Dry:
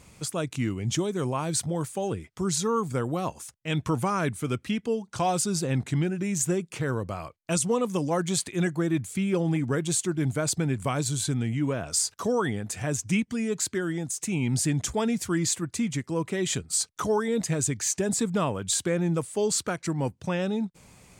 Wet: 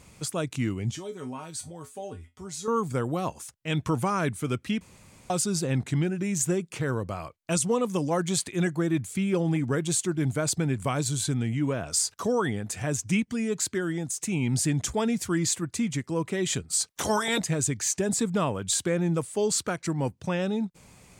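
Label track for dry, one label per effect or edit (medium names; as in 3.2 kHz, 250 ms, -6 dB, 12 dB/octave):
0.910000	2.680000	feedback comb 85 Hz, decay 0.18 s, harmonics odd, mix 90%
4.810000	5.300000	room tone
16.880000	17.380000	spectral peaks clipped ceiling under each frame's peak by 23 dB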